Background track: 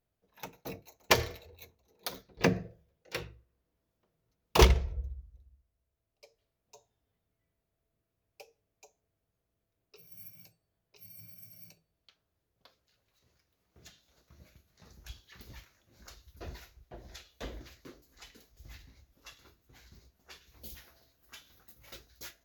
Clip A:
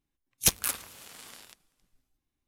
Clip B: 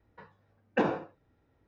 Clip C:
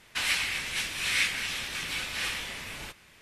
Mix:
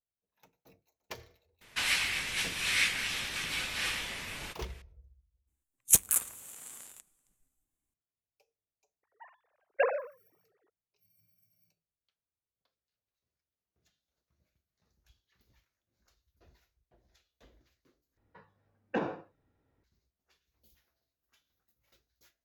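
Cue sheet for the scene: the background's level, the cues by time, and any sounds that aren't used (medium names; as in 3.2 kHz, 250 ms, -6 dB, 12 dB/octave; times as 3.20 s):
background track -20 dB
1.61 s: add C -1.5 dB
5.47 s: add A -6 dB + resonant high shelf 6.2 kHz +7 dB, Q 3
9.03 s: add B -1 dB + formants replaced by sine waves
18.17 s: replace with B -5.5 dB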